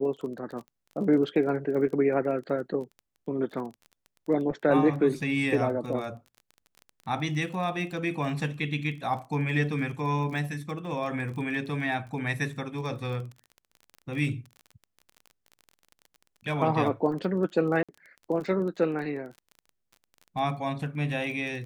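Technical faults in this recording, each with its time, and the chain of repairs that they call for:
surface crackle 24 per second −37 dBFS
0:17.83–0:17.89: drop-out 56 ms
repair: click removal
repair the gap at 0:17.83, 56 ms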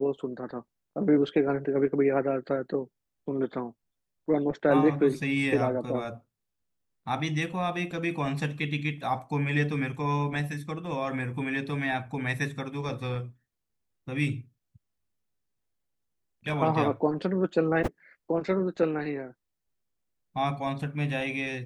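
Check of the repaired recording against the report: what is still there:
none of them is left

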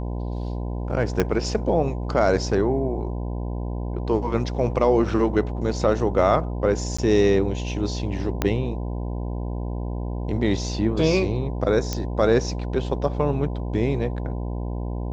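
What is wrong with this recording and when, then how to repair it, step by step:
mains buzz 60 Hz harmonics 17 −28 dBFS
0:01.20: click −7 dBFS
0:06.97–0:06.99: drop-out 15 ms
0:08.42: click −7 dBFS
0:11.93: click −11 dBFS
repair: click removal
hum removal 60 Hz, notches 17
repair the gap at 0:06.97, 15 ms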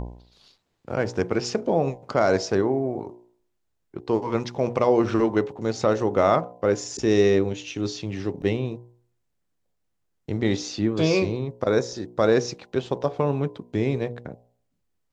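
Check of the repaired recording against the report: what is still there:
0:01.20: click
0:08.42: click

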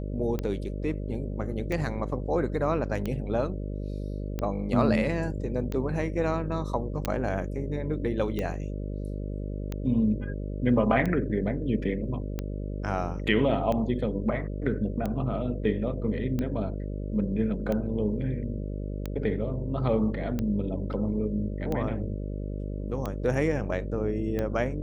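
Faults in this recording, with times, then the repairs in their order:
mains buzz 50 Hz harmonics 12 −33 dBFS
scratch tick 45 rpm −18 dBFS
0:07.05: click −13 dBFS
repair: click removal
hum removal 50 Hz, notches 12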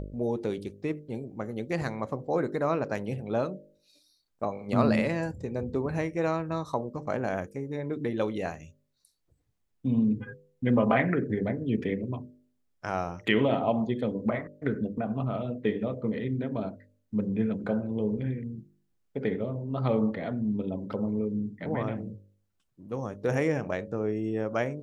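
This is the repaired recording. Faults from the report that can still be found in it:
none of them is left

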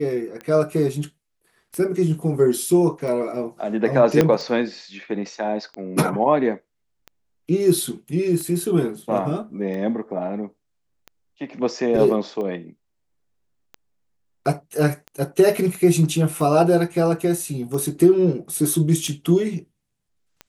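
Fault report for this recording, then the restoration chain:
scratch tick 45 rpm −21 dBFS
0:04.21: click −4 dBFS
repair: click removal

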